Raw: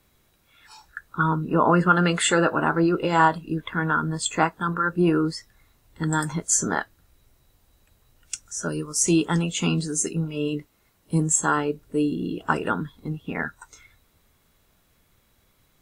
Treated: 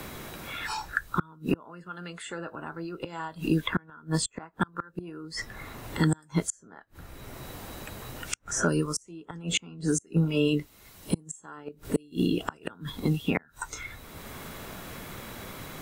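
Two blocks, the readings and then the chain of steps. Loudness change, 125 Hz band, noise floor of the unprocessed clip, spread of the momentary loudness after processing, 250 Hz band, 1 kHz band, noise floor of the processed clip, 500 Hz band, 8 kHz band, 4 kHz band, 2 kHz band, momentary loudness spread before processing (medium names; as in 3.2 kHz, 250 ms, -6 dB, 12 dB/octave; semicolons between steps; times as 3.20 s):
-8.5 dB, -4.5 dB, -65 dBFS, 15 LU, -5.5 dB, -13.0 dB, -59 dBFS, -7.0 dB, -9.5 dB, -3.5 dB, -8.0 dB, 12 LU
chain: inverted gate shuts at -16 dBFS, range -35 dB; three bands compressed up and down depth 70%; trim +6 dB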